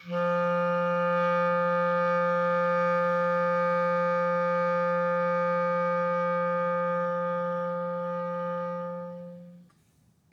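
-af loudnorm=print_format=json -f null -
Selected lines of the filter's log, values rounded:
"input_i" : "-27.4",
"input_tp" : "-15.9",
"input_lra" : "8.9",
"input_thresh" : "-38.2",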